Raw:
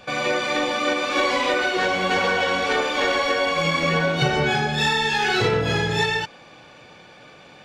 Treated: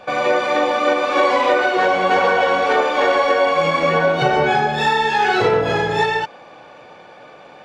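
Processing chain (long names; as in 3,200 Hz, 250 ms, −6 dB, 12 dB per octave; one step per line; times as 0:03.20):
parametric band 720 Hz +13.5 dB 2.8 octaves
level −5 dB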